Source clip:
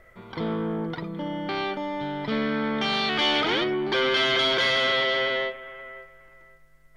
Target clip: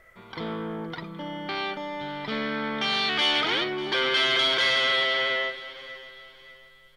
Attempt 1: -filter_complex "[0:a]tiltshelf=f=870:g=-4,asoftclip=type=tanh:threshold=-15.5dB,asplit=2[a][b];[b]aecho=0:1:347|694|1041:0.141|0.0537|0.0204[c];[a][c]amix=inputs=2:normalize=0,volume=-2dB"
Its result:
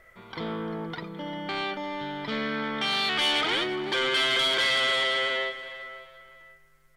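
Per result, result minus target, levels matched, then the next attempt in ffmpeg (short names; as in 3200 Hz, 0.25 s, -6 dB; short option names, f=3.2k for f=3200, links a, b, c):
echo 0.246 s early; soft clip: distortion +12 dB
-filter_complex "[0:a]tiltshelf=f=870:g=-4,asoftclip=type=tanh:threshold=-15.5dB,asplit=2[a][b];[b]aecho=0:1:593|1186|1779:0.141|0.0537|0.0204[c];[a][c]amix=inputs=2:normalize=0,volume=-2dB"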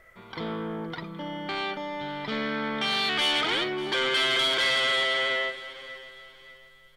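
soft clip: distortion +12 dB
-filter_complex "[0:a]tiltshelf=f=870:g=-4,asoftclip=type=tanh:threshold=-8dB,asplit=2[a][b];[b]aecho=0:1:593|1186|1779:0.141|0.0537|0.0204[c];[a][c]amix=inputs=2:normalize=0,volume=-2dB"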